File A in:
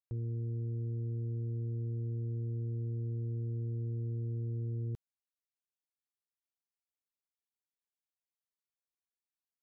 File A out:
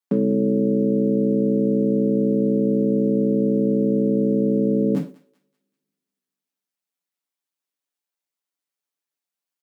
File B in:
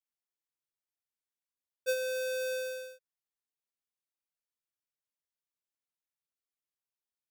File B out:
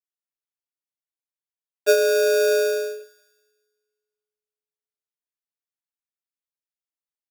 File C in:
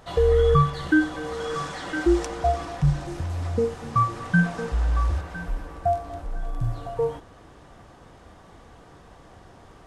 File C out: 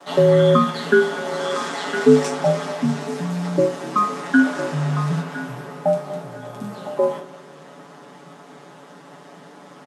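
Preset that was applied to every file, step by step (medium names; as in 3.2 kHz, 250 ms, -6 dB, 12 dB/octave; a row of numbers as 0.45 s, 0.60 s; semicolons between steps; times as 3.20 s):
spectral sustain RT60 0.32 s; ring modulator 90 Hz; spring tank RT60 2.3 s, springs 40/46 ms, chirp 60 ms, DRR 19.5 dB; gate with hold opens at -46 dBFS; steep high-pass 160 Hz 48 dB/octave; comb 7 ms, depth 71%; thinning echo 193 ms, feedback 43%, high-pass 970 Hz, level -18.5 dB; normalise loudness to -20 LUFS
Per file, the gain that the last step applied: +27.5 dB, +14.5 dB, +7.0 dB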